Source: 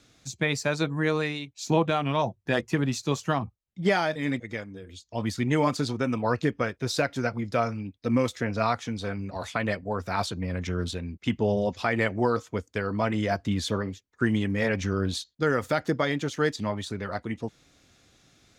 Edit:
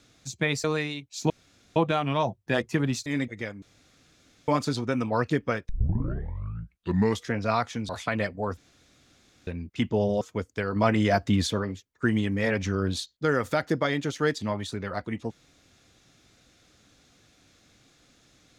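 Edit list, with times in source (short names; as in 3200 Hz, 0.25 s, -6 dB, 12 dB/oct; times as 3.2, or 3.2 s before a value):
0.64–1.09 cut
1.75 insert room tone 0.46 s
3.05–4.18 cut
4.74–5.6 room tone
6.81 tape start 1.61 s
9.01–9.37 cut
10.05–10.95 room tone
11.69–12.39 cut
12.94–13.65 gain +4 dB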